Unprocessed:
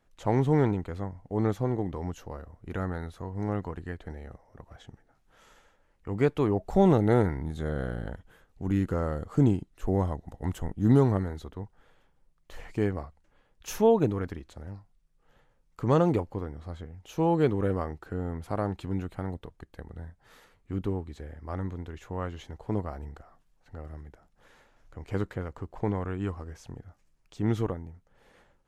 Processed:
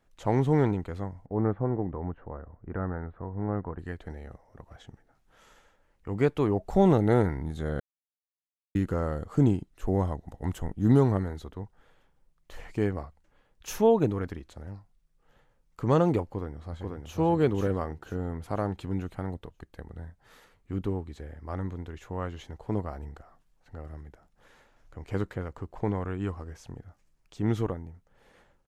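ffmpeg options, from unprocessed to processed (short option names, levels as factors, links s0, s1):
-filter_complex "[0:a]asettb=1/sr,asplit=3[s0][s1][s2];[s0]atrim=end=1.264[s3];[s1]atrim=start=1.26:end=3.79,asetpts=PTS-STARTPTS,afade=t=in:d=0.004:c=qsin,afade=t=out:st=2.526:d=0.004:c=qsin,lowpass=f=1700:w=0.5412,lowpass=f=1700:w=1.3066[s4];[s2]atrim=start=3.786[s5];[s3][s4]acrossfade=d=0.004:c1=hsin:c2=qsin[s6];[s6][s5]acrossfade=d=0.004:c1=qsin:c2=hsin,asplit=2[s7][s8];[s8]afade=t=in:st=16.23:d=0.01,afade=t=out:st=17.18:d=0.01,aecho=0:1:490|980|1470|1960|2450:0.749894|0.299958|0.119983|0.0479932|0.0191973[s9];[s7][s9]amix=inputs=2:normalize=0,asplit=3[s10][s11][s12];[s10]atrim=end=7.8,asetpts=PTS-STARTPTS,afade=t=out:st=7.796:d=0.004:c=hsin[s13];[s11]atrim=start=7.8:end=8.75,asetpts=PTS-STARTPTS,volume=0[s14];[s12]atrim=start=8.75,asetpts=PTS-STARTPTS,afade=t=in:d=0.004:c=hsin[s15];[s13][s14][s15]concat=n=3:v=0:a=1"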